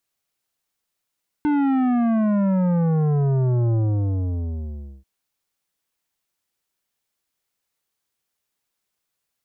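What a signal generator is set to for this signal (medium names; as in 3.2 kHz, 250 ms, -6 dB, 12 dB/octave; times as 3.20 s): sub drop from 300 Hz, over 3.59 s, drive 11.5 dB, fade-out 1.31 s, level -18 dB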